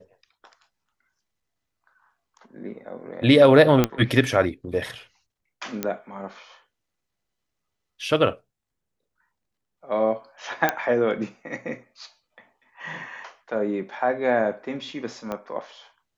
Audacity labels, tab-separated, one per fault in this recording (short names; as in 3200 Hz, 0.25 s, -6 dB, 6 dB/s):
3.840000	3.840000	pop -5 dBFS
5.830000	5.830000	pop -10 dBFS
10.690000	10.690000	pop -6 dBFS
15.320000	15.320000	pop -17 dBFS